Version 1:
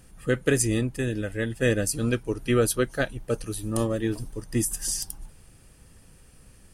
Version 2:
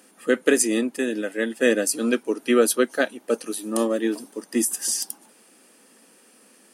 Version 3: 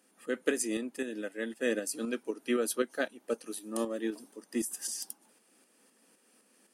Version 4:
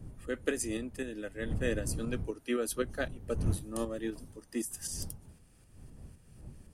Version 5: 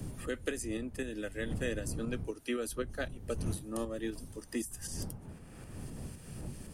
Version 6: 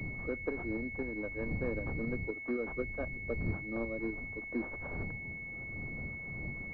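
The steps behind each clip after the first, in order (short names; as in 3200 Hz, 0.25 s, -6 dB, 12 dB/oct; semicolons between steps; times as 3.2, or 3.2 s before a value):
elliptic high-pass 230 Hz, stop band 60 dB; gain +5 dB
tremolo saw up 3.9 Hz, depth 50%; gain -9 dB
wind noise 120 Hz -38 dBFS; gain -2.5 dB
three-band squash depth 70%; gain -2 dB
pulse-width modulation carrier 2200 Hz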